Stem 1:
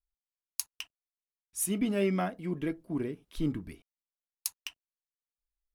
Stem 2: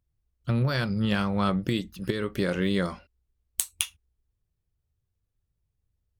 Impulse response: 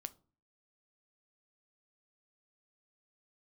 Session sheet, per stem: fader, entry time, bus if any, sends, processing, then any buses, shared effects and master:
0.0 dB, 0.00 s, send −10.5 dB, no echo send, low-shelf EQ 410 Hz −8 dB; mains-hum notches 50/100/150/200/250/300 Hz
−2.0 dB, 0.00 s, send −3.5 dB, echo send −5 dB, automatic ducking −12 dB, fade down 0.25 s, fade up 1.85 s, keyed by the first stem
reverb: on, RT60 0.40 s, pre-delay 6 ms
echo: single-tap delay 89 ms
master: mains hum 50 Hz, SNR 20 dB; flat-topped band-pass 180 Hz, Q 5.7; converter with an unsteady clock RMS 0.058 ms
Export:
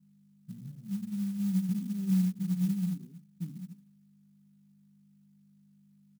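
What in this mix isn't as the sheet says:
stem 1 0.0 dB → +10.5 dB
reverb return +7.5 dB

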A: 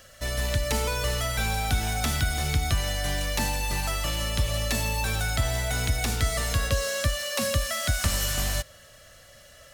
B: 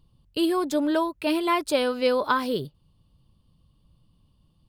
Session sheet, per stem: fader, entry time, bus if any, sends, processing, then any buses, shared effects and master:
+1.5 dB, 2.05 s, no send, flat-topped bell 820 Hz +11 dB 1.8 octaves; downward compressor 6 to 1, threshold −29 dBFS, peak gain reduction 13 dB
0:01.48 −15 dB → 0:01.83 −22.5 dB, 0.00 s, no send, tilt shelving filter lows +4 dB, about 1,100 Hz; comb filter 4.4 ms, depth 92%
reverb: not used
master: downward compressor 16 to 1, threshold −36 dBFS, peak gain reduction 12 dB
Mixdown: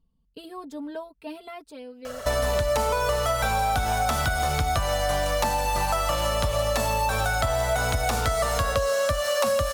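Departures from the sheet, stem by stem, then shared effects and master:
stem A +1.5 dB → +7.5 dB
master: missing downward compressor 16 to 1, threshold −36 dBFS, peak gain reduction 12 dB

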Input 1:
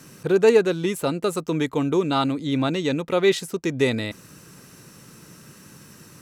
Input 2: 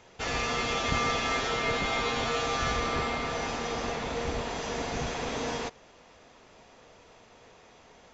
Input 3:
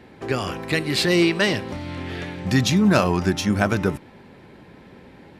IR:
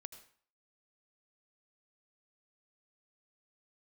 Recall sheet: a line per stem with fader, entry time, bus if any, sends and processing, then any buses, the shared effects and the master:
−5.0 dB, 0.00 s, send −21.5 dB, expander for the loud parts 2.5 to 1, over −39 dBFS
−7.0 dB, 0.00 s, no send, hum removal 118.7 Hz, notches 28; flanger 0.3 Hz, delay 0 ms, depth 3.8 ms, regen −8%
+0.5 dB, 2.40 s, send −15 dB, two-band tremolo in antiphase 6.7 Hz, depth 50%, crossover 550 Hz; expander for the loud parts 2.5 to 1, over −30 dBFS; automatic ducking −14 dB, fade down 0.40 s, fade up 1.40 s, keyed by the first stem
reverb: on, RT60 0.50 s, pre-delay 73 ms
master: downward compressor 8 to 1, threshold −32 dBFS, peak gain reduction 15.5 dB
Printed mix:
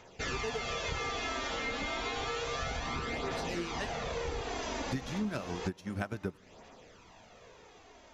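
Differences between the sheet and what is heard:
stem 1 −5.0 dB → −15.5 dB
stem 2 −7.0 dB → +2.0 dB

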